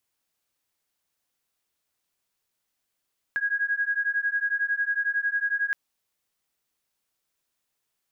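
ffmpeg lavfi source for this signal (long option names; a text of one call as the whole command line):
ffmpeg -f lavfi -i "aevalsrc='0.0473*(sin(2*PI*1640*t)+sin(2*PI*1651*t))':duration=2.37:sample_rate=44100" out.wav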